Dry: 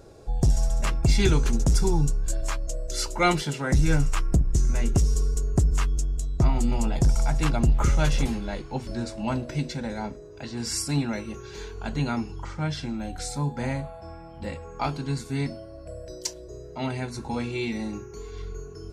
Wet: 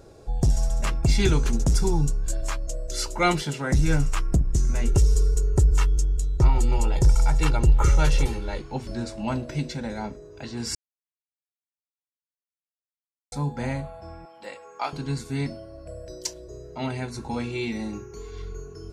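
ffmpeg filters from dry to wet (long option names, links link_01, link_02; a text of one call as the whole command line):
ffmpeg -i in.wav -filter_complex "[0:a]asettb=1/sr,asplit=3[link_01][link_02][link_03];[link_01]atrim=end=4.874[link_04];[link_02]atrim=start=4.87:end=8.58,asetpts=PTS-STARTPTS,afade=type=in:duration=0.004:curve=qsin,afade=type=out:start_time=3.706:duration=0.004:curve=qsin,aecho=1:1:2.2:0.62,atrim=end_sample=163611[link_05];[link_03]atrim=start=8.576[link_06];[link_04][link_05]acrossfade=duration=0.004:curve1=hsin:curve2=qsin[link_07];[link_07][link_06]acrossfade=duration=0.004:curve1=qsin:curve2=hsin,asettb=1/sr,asplit=3[link_08][link_09][link_10];[link_08]atrim=end=14.254[link_11];[link_09]atrim=start=14.25:end=14.93,asetpts=PTS-STARTPTS,afade=type=in:duration=0.004:curve=qsin,afade=type=out:start_time=0.676:duration=0.004:curve=qsin,highpass=540[link_12];[link_10]atrim=start=14.926[link_13];[link_11][link_12]acrossfade=duration=0.004:curve1=hsin:curve2=qsin[link_14];[link_14][link_13]acrossfade=duration=0.004:curve1=qsin:curve2=hsin,asplit=3[link_15][link_16][link_17];[link_15]atrim=end=10.75,asetpts=PTS-STARTPTS,afade=type=out:start_time=10.746:duration=0.004:curve=hsin[link_18];[link_16]atrim=start=10.75:end=13.32,asetpts=PTS-STARTPTS,volume=0[link_19];[link_17]atrim=start=13.32,asetpts=PTS-STARTPTS,afade=type=in:duration=0.004:curve=hsin[link_20];[link_18][link_19][link_20]concat=n=3:v=0:a=1" out.wav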